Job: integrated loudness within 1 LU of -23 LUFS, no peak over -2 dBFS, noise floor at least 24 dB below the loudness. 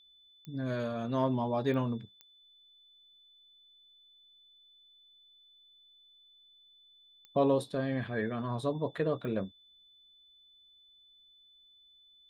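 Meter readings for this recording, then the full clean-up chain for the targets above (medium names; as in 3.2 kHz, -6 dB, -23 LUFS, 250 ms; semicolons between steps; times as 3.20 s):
clicks found 5; steady tone 3.5 kHz; tone level -59 dBFS; loudness -33.0 LUFS; peak level -16.0 dBFS; loudness target -23.0 LUFS
-> de-click; band-stop 3.5 kHz, Q 30; trim +10 dB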